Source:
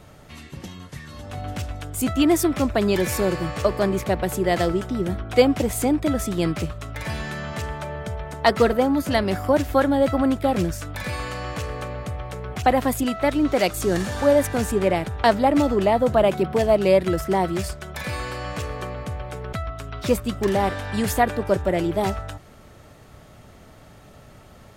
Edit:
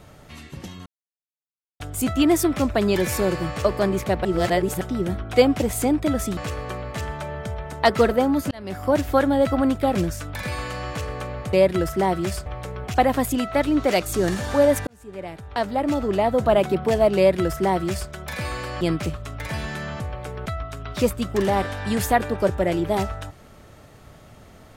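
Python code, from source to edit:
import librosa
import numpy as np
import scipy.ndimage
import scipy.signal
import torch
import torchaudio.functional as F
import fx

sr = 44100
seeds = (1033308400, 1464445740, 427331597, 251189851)

y = fx.edit(x, sr, fx.silence(start_s=0.86, length_s=0.94),
    fx.reverse_span(start_s=4.25, length_s=0.56),
    fx.swap(start_s=6.37, length_s=1.19, other_s=18.49, other_length_s=0.58),
    fx.fade_in_span(start_s=9.12, length_s=0.46),
    fx.fade_in_span(start_s=14.55, length_s=1.67),
    fx.duplicate(start_s=16.85, length_s=0.93, to_s=12.14), tone=tone)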